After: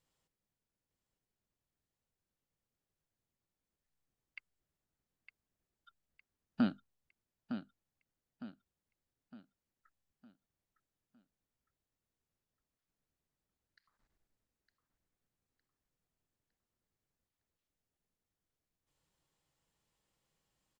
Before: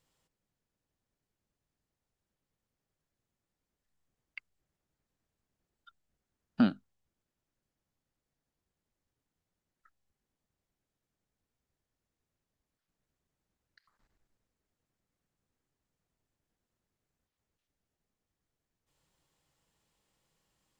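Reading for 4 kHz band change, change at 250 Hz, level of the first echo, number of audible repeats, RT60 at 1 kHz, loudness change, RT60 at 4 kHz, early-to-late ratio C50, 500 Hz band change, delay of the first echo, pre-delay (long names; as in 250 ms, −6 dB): −5.0 dB, −5.0 dB, −9.5 dB, 4, no reverb audible, −9.5 dB, no reverb audible, no reverb audible, −5.0 dB, 909 ms, no reverb audible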